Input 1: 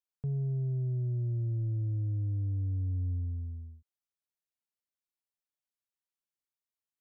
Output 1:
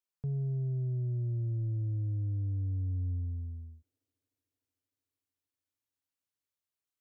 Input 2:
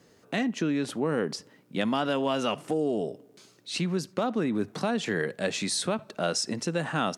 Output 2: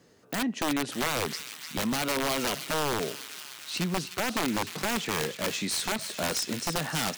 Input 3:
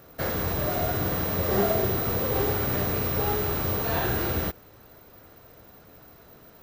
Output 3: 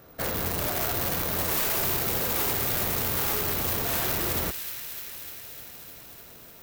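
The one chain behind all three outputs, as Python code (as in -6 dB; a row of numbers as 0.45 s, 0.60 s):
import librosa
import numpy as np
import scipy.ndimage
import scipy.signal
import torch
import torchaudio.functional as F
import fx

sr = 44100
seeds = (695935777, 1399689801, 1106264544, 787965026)

y = (np.mod(10.0 ** (20.5 / 20.0) * x + 1.0, 2.0) - 1.0) / 10.0 ** (20.5 / 20.0)
y = fx.echo_wet_highpass(y, sr, ms=302, feedback_pct=75, hz=2100.0, wet_db=-8.0)
y = y * librosa.db_to_amplitude(-1.0)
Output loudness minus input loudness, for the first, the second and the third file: -1.0 LU, -0.5 LU, 0.0 LU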